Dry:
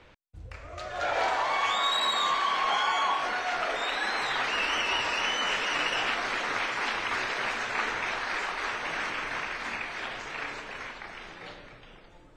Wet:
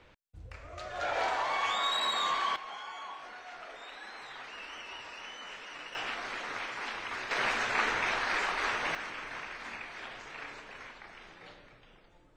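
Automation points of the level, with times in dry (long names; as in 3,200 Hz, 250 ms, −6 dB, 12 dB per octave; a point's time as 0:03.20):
−4 dB
from 0:02.56 −16.5 dB
from 0:05.95 −8 dB
from 0:07.31 +0.5 dB
from 0:08.95 −8 dB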